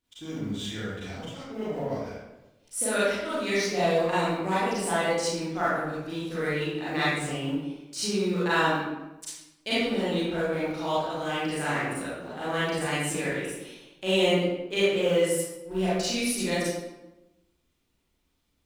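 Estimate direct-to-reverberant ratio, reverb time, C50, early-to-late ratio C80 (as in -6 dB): -11.0 dB, 1.0 s, -4.5 dB, 0.0 dB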